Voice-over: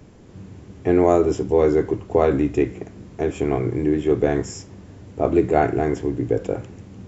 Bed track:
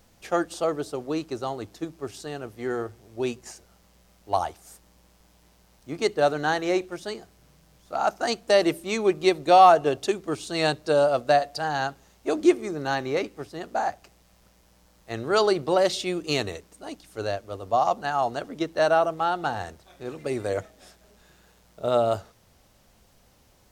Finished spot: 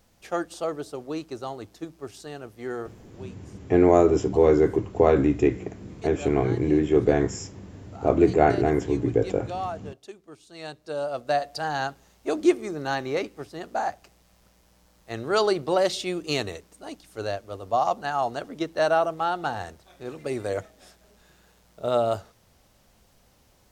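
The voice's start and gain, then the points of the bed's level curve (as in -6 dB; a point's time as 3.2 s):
2.85 s, -1.0 dB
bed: 3 s -3.5 dB
3.3 s -17.5 dB
10.47 s -17.5 dB
11.56 s -1 dB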